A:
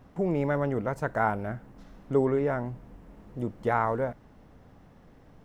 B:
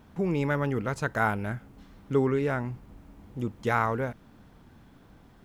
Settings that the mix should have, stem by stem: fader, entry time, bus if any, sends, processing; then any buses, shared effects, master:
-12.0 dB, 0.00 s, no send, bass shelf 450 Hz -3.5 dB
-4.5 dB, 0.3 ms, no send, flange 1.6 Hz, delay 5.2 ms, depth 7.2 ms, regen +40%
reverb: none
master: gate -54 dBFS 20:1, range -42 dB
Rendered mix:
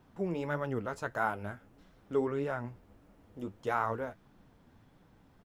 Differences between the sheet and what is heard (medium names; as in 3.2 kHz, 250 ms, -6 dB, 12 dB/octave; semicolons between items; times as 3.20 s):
stem B: polarity flipped; master: missing gate -54 dBFS 20:1, range -42 dB